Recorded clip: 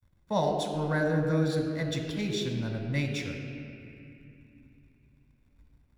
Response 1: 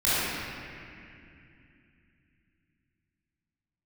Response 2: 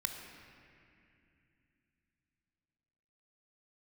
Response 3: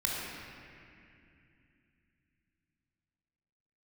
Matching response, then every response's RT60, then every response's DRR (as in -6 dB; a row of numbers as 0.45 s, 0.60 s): 2; 2.6 s, 2.6 s, 2.6 s; -14.0 dB, 3.0 dB, -5.0 dB